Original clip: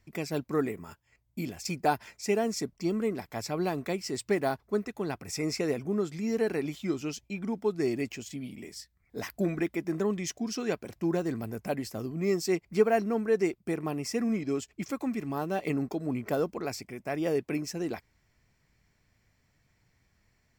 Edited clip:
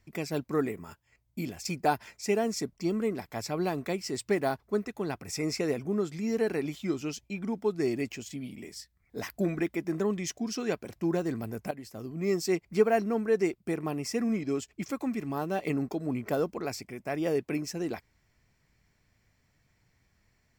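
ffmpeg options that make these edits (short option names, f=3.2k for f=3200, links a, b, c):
-filter_complex "[0:a]asplit=2[a][b];[a]atrim=end=11.71,asetpts=PTS-STARTPTS,afade=t=out:st=11.706:d=0.004:c=hsin:silence=0.237137[c];[b]atrim=start=11.71,asetpts=PTS-STARTPTS,afade=t=in:d=0.65:silence=0.237137[d];[c][d]concat=n=2:v=0:a=1"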